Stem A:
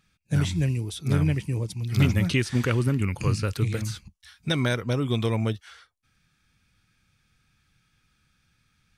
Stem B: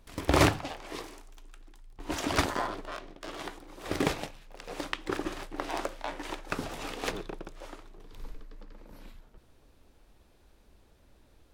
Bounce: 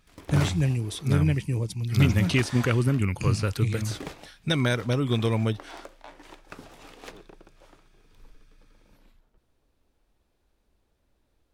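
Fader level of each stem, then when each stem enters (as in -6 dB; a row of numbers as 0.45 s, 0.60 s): +0.5 dB, -10.0 dB; 0.00 s, 0.00 s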